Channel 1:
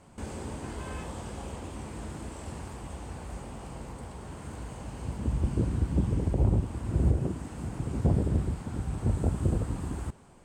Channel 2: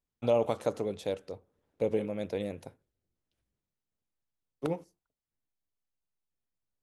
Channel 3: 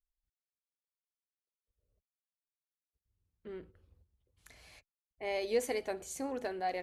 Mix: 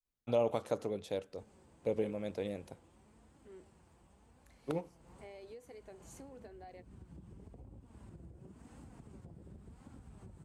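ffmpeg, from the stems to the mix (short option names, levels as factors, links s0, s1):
-filter_complex "[0:a]acompressor=threshold=0.0178:ratio=5,flanger=delay=3.5:depth=2.6:regen=53:speed=0.92:shape=triangular,adelay=1200,volume=0.355,afade=t=in:st=4.98:d=0.22:silence=0.316228[s0];[1:a]adelay=50,volume=0.596[s1];[2:a]adynamicequalizer=threshold=0.00501:dfrequency=380:dqfactor=0.98:tfrequency=380:tqfactor=0.98:attack=5:release=100:ratio=0.375:range=3:mode=boostabove:tftype=bell,volume=0.266[s2];[s0][s2]amix=inputs=2:normalize=0,acompressor=threshold=0.00398:ratio=16,volume=1[s3];[s1][s3]amix=inputs=2:normalize=0"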